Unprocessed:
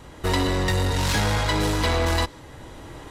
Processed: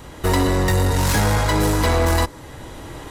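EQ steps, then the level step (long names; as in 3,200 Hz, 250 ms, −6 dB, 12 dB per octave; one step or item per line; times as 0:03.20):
dynamic equaliser 3,400 Hz, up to −7 dB, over −41 dBFS, Q 0.93
high-shelf EQ 12,000 Hz +9.5 dB
+5.0 dB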